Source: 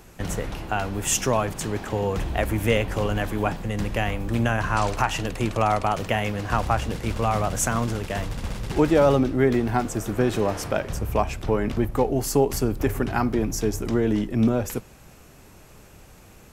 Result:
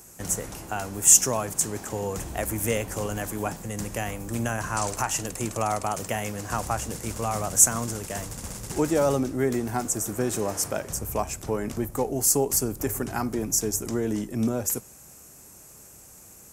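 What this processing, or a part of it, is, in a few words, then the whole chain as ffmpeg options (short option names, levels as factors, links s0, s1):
budget condenser microphone: -af "highpass=f=86:p=1,highshelf=f=5100:t=q:w=1.5:g=12.5,volume=0.596"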